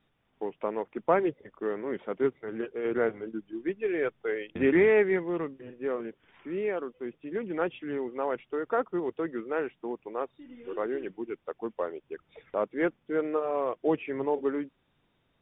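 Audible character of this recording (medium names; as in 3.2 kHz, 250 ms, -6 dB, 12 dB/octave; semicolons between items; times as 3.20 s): noise floor -73 dBFS; spectral tilt -2.0 dB/octave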